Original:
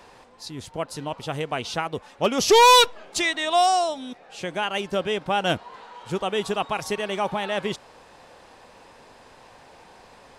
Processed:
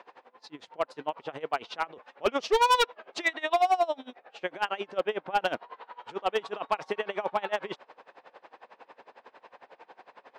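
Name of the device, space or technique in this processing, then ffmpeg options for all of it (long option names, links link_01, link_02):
helicopter radio: -filter_complex "[0:a]asettb=1/sr,asplit=3[link_01][link_02][link_03];[link_01]atrim=end=4.984[link_04];[link_02]atrim=start=4.98:end=5.4,asetpts=PTS-STARTPTS,afade=type=in:duration=0.004:curve=qsin,afade=type=out:start_time=0.416:duration=0.004:curve=qsin,highshelf=frequency=3600:gain=-5.5[link_05];[link_03]atrim=start=5.396[link_06];[link_04][link_05]acrossfade=duration=0.004:curve1=hsin:curve2=qsin[link_07];[link_07][link_06]acrossfade=duration=0.004:curve1=qsin:curve2=hsin,highpass=390,lowpass=2500,aeval=exprs='val(0)*pow(10,-23*(0.5-0.5*cos(2*PI*11*n/s))/20)':channel_layout=same,asoftclip=type=hard:threshold=-21dB,volume=3.5dB"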